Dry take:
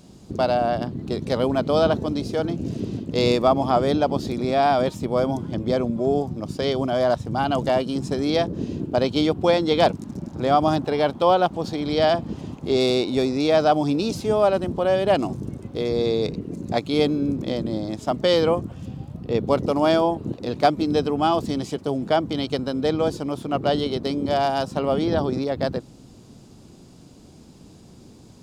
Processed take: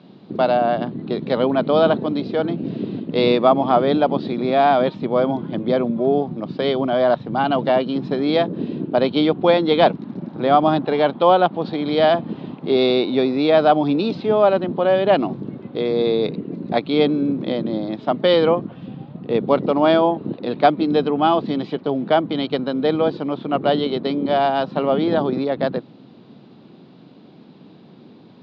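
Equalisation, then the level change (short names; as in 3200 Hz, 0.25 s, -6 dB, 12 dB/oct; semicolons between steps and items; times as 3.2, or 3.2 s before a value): HPF 150 Hz 24 dB/oct; Chebyshev low-pass 4000 Hz, order 4; air absorption 57 m; +4.5 dB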